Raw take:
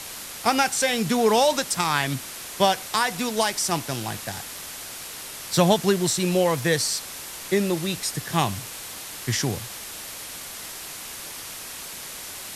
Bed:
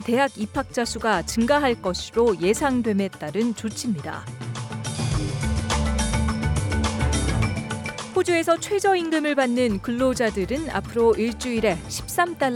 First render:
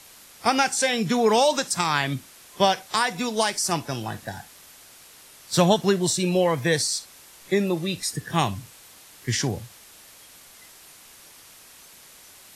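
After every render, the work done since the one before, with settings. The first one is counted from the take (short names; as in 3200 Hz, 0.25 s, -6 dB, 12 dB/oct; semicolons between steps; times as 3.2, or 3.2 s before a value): noise print and reduce 12 dB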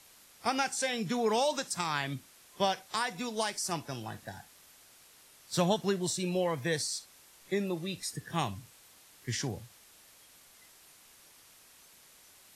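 gain -9.5 dB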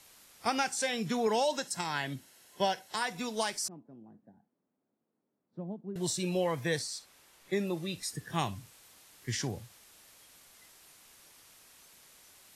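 1.27–3.02 notch comb 1200 Hz; 3.68–5.96 ladder band-pass 260 Hz, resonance 45%; 6.79–7.53 tone controls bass -2 dB, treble -5 dB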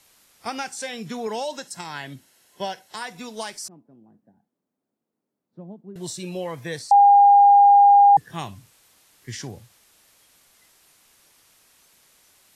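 6.91–8.17 bleep 808 Hz -9 dBFS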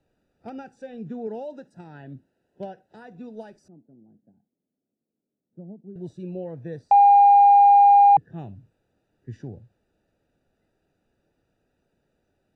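Wiener smoothing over 41 samples; high shelf 7100 Hz -8.5 dB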